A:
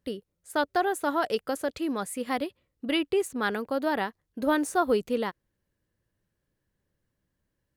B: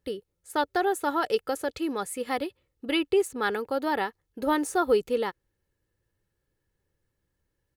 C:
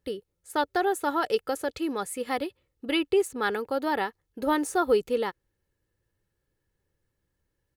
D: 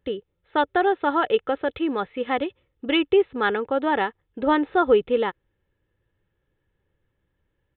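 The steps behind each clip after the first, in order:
comb 2.3 ms, depth 43%
nothing audible
downsampling 8000 Hz; gain +5 dB

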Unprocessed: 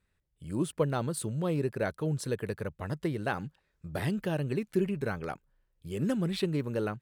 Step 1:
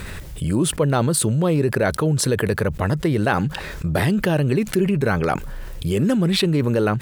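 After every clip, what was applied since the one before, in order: fast leveller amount 70%; gain +7 dB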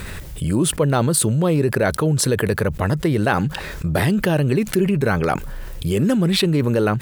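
high shelf 11000 Hz +4 dB; gain +1 dB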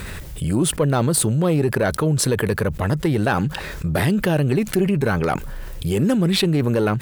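one diode to ground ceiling -7.5 dBFS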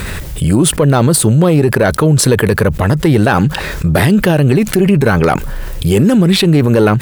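maximiser +11 dB; gain -1 dB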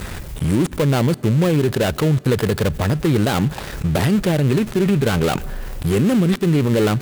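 switching dead time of 0.22 ms; on a send at -22 dB: reverb RT60 3.3 s, pre-delay 4 ms; on the sum: gain -6.5 dB

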